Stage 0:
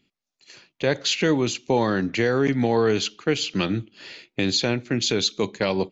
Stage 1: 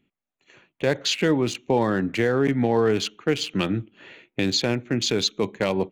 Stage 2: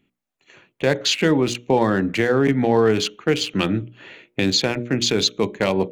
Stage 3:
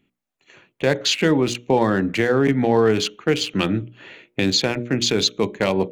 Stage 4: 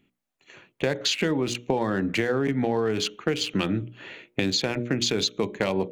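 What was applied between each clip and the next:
Wiener smoothing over 9 samples
notches 60/120/180/240/300/360/420/480/540/600 Hz; gain +4 dB
nothing audible
compressor, threshold -21 dBFS, peak gain reduction 9 dB

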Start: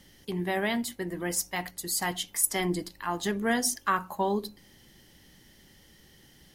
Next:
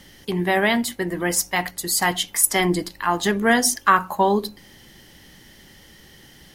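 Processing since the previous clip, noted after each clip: bell 1400 Hz +3.5 dB 2.8 oct; gain +7.5 dB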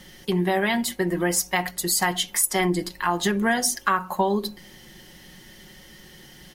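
comb 5.5 ms, depth 50%; compressor 4:1, threshold -19 dBFS, peak gain reduction 9.5 dB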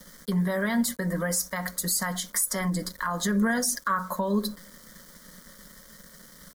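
sample gate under -44.5 dBFS; limiter -17 dBFS, peak gain reduction 9.5 dB; fixed phaser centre 530 Hz, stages 8; gain +2.5 dB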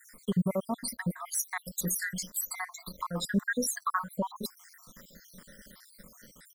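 random spectral dropouts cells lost 70%

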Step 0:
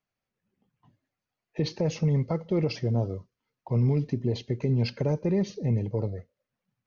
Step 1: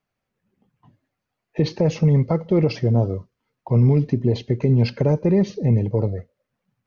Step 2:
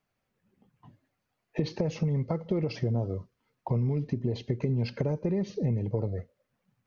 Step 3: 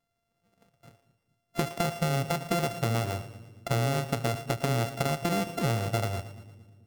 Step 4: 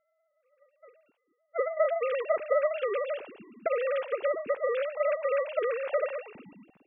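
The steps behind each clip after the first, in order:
high shelf 3300 Hz -7.5 dB; gain +8 dB
compressor, threshold -26 dBFS, peak gain reduction 13 dB
sample sorter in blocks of 64 samples; split-band echo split 360 Hz, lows 0.216 s, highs 0.115 s, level -14 dB
sine-wave speech

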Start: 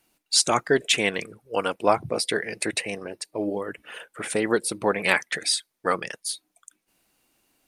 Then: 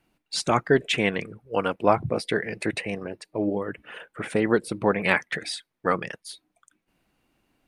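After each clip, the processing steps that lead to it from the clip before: tone controls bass +7 dB, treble -13 dB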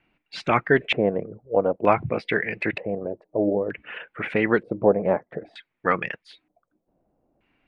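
LFO low-pass square 0.54 Hz 620–2400 Hz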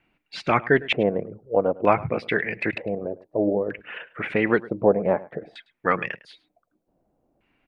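outdoor echo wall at 18 m, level -20 dB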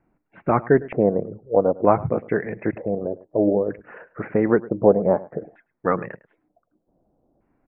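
Gaussian blur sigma 6.4 samples; gain +4 dB

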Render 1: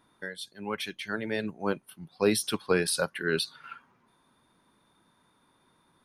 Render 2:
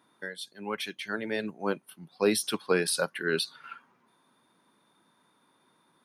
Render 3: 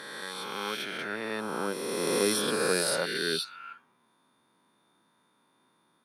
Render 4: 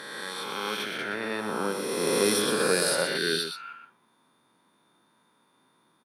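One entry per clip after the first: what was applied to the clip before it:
HPF 170 Hz 12 dB/oct
spectral swells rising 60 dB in 2.43 s; gain -5.5 dB
echo 0.121 s -7.5 dB; gain +2 dB

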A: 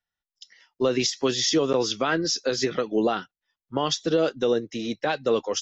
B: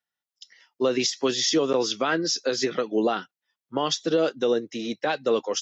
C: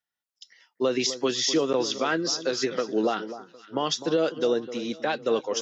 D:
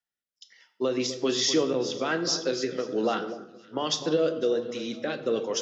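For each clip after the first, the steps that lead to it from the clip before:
HPF 170 Hz 12 dB/oct
echo with dull and thin repeats by turns 0.253 s, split 1300 Hz, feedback 55%, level -12.5 dB; gain -1.5 dB
rotary speaker horn 1.2 Hz; on a send at -8.5 dB: reverb RT60 0.80 s, pre-delay 10 ms

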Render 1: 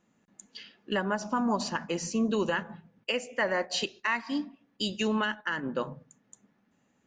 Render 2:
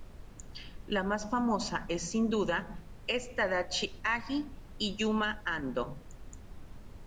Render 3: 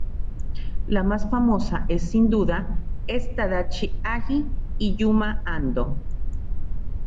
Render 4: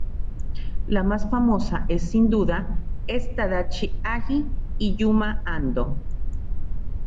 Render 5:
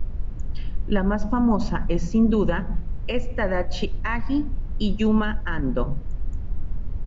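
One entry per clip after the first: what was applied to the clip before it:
added noise brown -44 dBFS; gain -2 dB
RIAA curve playback; gain +4 dB
nothing audible
downsampling 16000 Hz

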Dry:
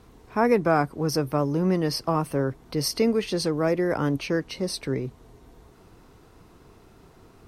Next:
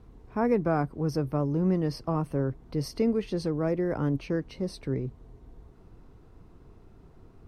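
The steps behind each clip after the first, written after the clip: tilt -2.5 dB/oct; gain -7.5 dB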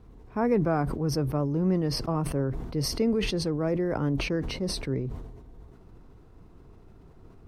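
sustainer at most 45 dB/s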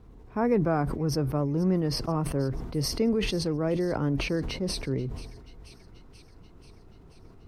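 thin delay 0.484 s, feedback 67%, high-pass 2100 Hz, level -18 dB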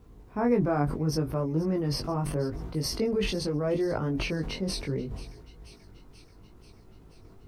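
requantised 12-bit, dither none; chorus 0.73 Hz, delay 18.5 ms, depth 2.5 ms; gain +2 dB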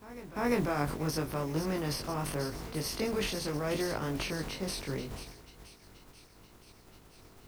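spectral contrast lowered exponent 0.61; reverse echo 0.346 s -17.5 dB; gain -5 dB

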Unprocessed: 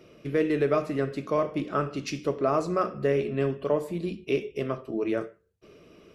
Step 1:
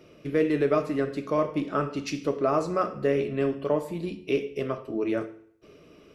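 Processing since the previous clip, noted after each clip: FDN reverb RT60 0.66 s, low-frequency decay 0.95×, high-frequency decay 0.95×, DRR 11.5 dB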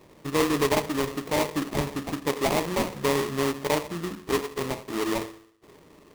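sample-rate reducer 1500 Hz, jitter 20%

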